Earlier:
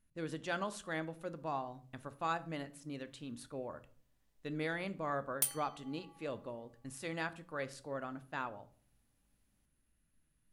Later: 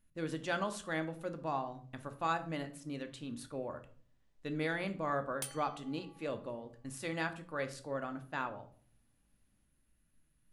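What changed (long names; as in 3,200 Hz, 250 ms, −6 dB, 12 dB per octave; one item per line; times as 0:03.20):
speech: send +6.5 dB
background: add high-frequency loss of the air 55 metres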